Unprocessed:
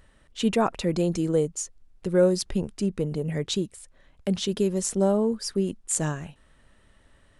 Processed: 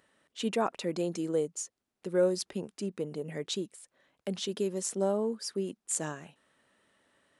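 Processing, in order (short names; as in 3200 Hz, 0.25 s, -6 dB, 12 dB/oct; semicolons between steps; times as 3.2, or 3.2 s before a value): HPF 240 Hz 12 dB/oct; gain -5.5 dB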